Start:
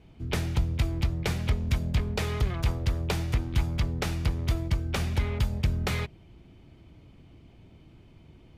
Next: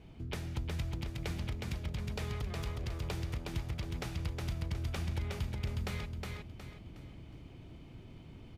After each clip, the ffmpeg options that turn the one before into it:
ffmpeg -i in.wav -filter_complex "[0:a]acompressor=threshold=-42dB:ratio=2.5,asplit=2[link_01][link_02];[link_02]aecho=0:1:364|728|1092|1456|1820:0.708|0.255|0.0917|0.033|0.0119[link_03];[link_01][link_03]amix=inputs=2:normalize=0" out.wav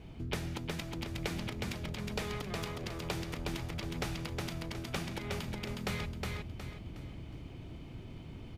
ffmpeg -i in.wav -af "afftfilt=real='re*lt(hypot(re,im),0.112)':imag='im*lt(hypot(re,im),0.112)':win_size=1024:overlap=0.75,volume=4.5dB" out.wav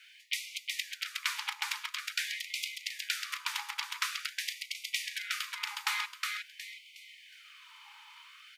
ffmpeg -i in.wav -af "afftfilt=real='re*gte(b*sr/1024,790*pow(2000/790,0.5+0.5*sin(2*PI*0.47*pts/sr)))':imag='im*gte(b*sr/1024,790*pow(2000/790,0.5+0.5*sin(2*PI*0.47*pts/sr)))':win_size=1024:overlap=0.75,volume=8.5dB" out.wav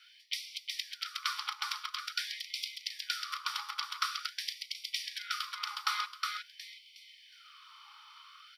ffmpeg -i in.wav -af "aeval=exprs='0.224*(cos(1*acos(clip(val(0)/0.224,-1,1)))-cos(1*PI/2))+0.00178*(cos(2*acos(clip(val(0)/0.224,-1,1)))-cos(2*PI/2))':channel_layout=same,superequalizer=6b=2.82:10b=3.98:13b=2:14b=2.82:15b=0.501,volume=-6.5dB" out.wav

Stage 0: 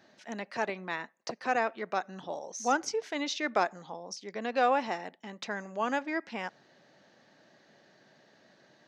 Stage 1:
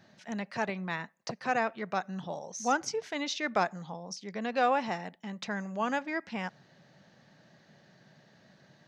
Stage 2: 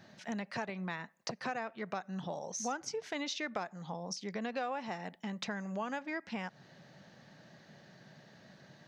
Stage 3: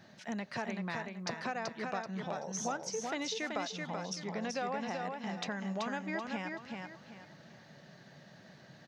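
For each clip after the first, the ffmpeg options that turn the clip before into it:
ffmpeg -i in.wav -af "lowshelf=frequency=220:width_type=q:width=1.5:gain=8.5" out.wav
ffmpeg -i in.wav -af "acompressor=threshold=-38dB:ratio=5,volume=2.5dB" out.wav
ffmpeg -i in.wav -af "aecho=1:1:382|764|1146|1528:0.631|0.196|0.0606|0.0188" out.wav

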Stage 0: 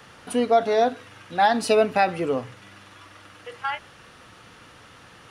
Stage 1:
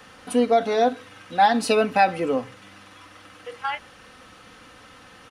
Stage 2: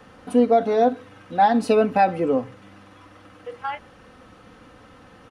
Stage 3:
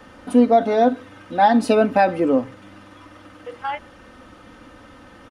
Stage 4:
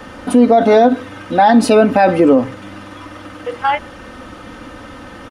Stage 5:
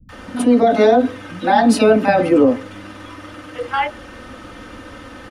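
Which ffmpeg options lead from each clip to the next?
ffmpeg -i in.wav -af "aecho=1:1:3.9:0.45" out.wav
ffmpeg -i in.wav -af "tiltshelf=frequency=1300:gain=6.5,volume=-2.5dB" out.wav
ffmpeg -i in.wav -af "aecho=1:1:3.3:0.39,volume=3dB" out.wav
ffmpeg -i in.wav -af "alimiter=level_in=12dB:limit=-1dB:release=50:level=0:latency=1,volume=-1dB" out.wav
ffmpeg -i in.wav -filter_complex "[0:a]acrossover=split=170|820[link_01][link_02][link_03];[link_03]adelay=90[link_04];[link_02]adelay=120[link_05];[link_01][link_05][link_04]amix=inputs=3:normalize=0,volume=-1dB" out.wav

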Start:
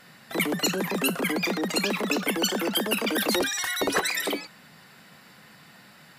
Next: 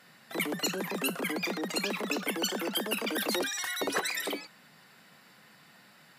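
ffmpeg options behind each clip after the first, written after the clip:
ffmpeg -i in.wav -af "highpass=frequency=160:poles=1,volume=-5.5dB" out.wav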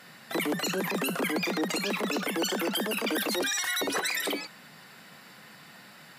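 ffmpeg -i in.wav -af "alimiter=level_in=3dB:limit=-24dB:level=0:latency=1:release=78,volume=-3dB,volume=7dB" out.wav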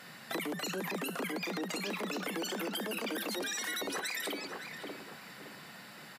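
ffmpeg -i in.wav -filter_complex "[0:a]asplit=2[link_01][link_02];[link_02]adelay=565,lowpass=frequency=2000:poles=1,volume=-12dB,asplit=2[link_03][link_04];[link_04]adelay=565,lowpass=frequency=2000:poles=1,volume=0.39,asplit=2[link_05][link_06];[link_06]adelay=565,lowpass=frequency=2000:poles=1,volume=0.39,asplit=2[link_07][link_08];[link_08]adelay=565,lowpass=frequency=2000:poles=1,volume=0.39[link_09];[link_01][link_03][link_05][link_07][link_09]amix=inputs=5:normalize=0,acompressor=threshold=-34dB:ratio=6" out.wav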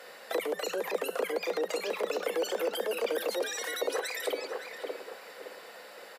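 ffmpeg -i in.wav -af "highpass=frequency=490:width_type=q:width=4.9" out.wav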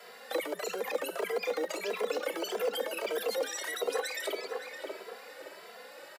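ffmpeg -i in.wav -filter_complex "[0:a]acrossover=split=310|1700|4600[link_01][link_02][link_03][link_04];[link_01]acrusher=samples=25:mix=1:aa=0.000001[link_05];[link_05][link_02][link_03][link_04]amix=inputs=4:normalize=0,asplit=2[link_06][link_07];[link_07]adelay=2.6,afreqshift=1.6[link_08];[link_06][link_08]amix=inputs=2:normalize=1,volume=2dB" out.wav

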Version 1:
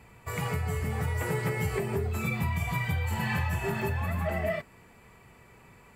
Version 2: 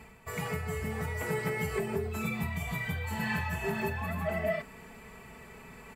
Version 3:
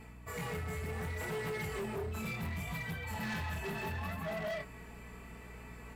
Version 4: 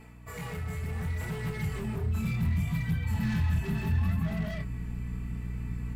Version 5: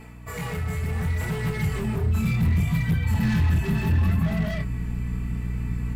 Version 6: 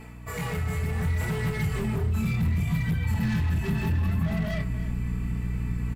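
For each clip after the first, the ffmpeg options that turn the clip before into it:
ffmpeg -i in.wav -af "aecho=1:1:4.6:0.54,areverse,acompressor=mode=upward:threshold=-36dB:ratio=2.5,areverse,volume=-3.5dB" out.wav
ffmpeg -i in.wav -af "flanger=delay=18.5:depth=7.8:speed=0.69,aeval=exprs='val(0)+0.00282*(sin(2*PI*60*n/s)+sin(2*PI*2*60*n/s)/2+sin(2*PI*3*60*n/s)/3+sin(2*PI*4*60*n/s)/4+sin(2*PI*5*60*n/s)/5)':channel_layout=same,asoftclip=type=hard:threshold=-35dB" out.wav
ffmpeg -i in.wav -af "equalizer=frequency=62:width=2.9:gain=-13.5,aeval=exprs='val(0)+0.00141*(sin(2*PI*60*n/s)+sin(2*PI*2*60*n/s)/2+sin(2*PI*3*60*n/s)/3+sin(2*PI*4*60*n/s)/4+sin(2*PI*5*60*n/s)/5)':channel_layout=same,asubboost=boost=12:cutoff=170" out.wav
ffmpeg -i in.wav -af "asoftclip=type=hard:threshold=-23dB,volume=7dB" out.wav
ffmpeg -i in.wav -af "acompressor=threshold=-22dB:ratio=6,aecho=1:1:294:0.158" out.wav

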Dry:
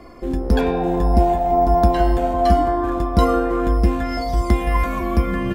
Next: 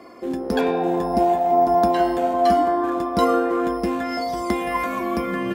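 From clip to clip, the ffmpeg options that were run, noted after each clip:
ffmpeg -i in.wav -af "highpass=230" out.wav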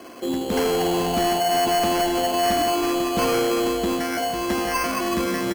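ffmpeg -i in.wav -filter_complex "[0:a]asplit=2[link_01][link_02];[link_02]aecho=0:1:75|150:0.282|0.211[link_03];[link_01][link_03]amix=inputs=2:normalize=0,acrusher=samples=12:mix=1:aa=0.000001,asoftclip=type=tanh:threshold=-20dB,volume=2.5dB" out.wav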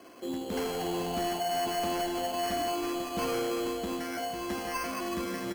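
ffmpeg -i in.wav -af "flanger=delay=10:depth=1.5:regen=-70:speed=1.3:shape=triangular,volume=-6dB" out.wav

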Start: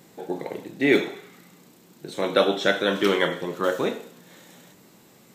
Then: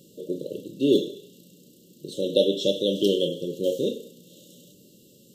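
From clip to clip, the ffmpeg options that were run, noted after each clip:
ffmpeg -i in.wav -af "afftfilt=real='re*(1-between(b*sr/4096,610,2700))':imag='im*(1-between(b*sr/4096,610,2700))':win_size=4096:overlap=0.75" out.wav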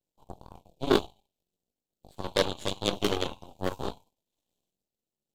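ffmpeg -i in.wav -af "flanger=delay=19:depth=2.6:speed=0.97,aeval=exprs='0.376*(cos(1*acos(clip(val(0)/0.376,-1,1)))-cos(1*PI/2))+0.188*(cos(2*acos(clip(val(0)/0.376,-1,1)))-cos(2*PI/2))+0.0531*(cos(7*acos(clip(val(0)/0.376,-1,1)))-cos(7*PI/2))+0.0473*(cos(8*acos(clip(val(0)/0.376,-1,1)))-cos(8*PI/2))':channel_layout=same" out.wav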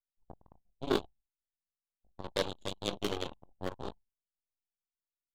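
ffmpeg -i in.wav -af "anlmdn=0.631,volume=-7dB" out.wav

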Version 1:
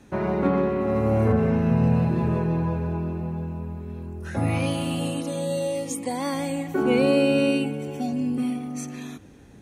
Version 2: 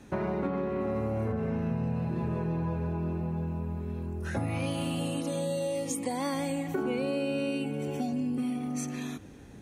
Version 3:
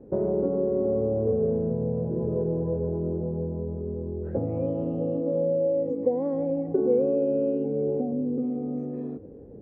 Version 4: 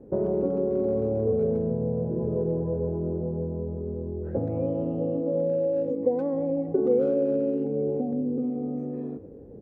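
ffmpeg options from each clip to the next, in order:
ffmpeg -i in.wav -af "acompressor=threshold=-28dB:ratio=6" out.wav
ffmpeg -i in.wav -af "lowpass=frequency=480:width_type=q:width=5" out.wav
ffmpeg -i in.wav -filter_complex "[0:a]asplit=2[link_01][link_02];[link_02]adelay=120,highpass=300,lowpass=3400,asoftclip=type=hard:threshold=-20.5dB,volume=-15dB[link_03];[link_01][link_03]amix=inputs=2:normalize=0" out.wav

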